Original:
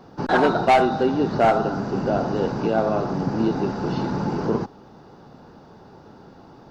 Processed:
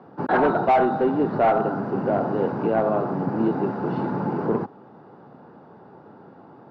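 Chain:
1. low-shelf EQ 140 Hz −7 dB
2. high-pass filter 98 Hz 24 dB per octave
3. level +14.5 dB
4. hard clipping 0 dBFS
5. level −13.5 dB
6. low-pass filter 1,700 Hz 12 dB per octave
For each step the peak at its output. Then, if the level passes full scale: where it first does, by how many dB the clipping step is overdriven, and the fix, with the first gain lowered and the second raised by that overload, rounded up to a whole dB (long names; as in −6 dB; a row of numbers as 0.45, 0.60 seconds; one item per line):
−9.5, −7.0, +7.5, 0.0, −13.5, −13.0 dBFS
step 3, 7.5 dB
step 3 +6.5 dB, step 5 −5.5 dB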